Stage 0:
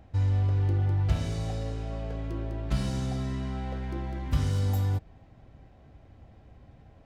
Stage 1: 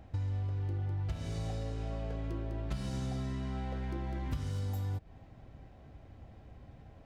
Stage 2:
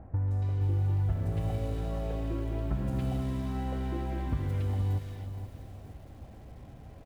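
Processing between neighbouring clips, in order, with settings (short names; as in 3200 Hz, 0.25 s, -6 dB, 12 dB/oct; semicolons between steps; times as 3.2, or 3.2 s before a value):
compressor 6:1, threshold -33 dBFS, peak gain reduction 14 dB
median filter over 9 samples; three bands offset in time lows, highs, mids 0.17/0.28 s, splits 1700/5500 Hz; lo-fi delay 0.473 s, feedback 35%, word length 10-bit, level -10 dB; gain +5 dB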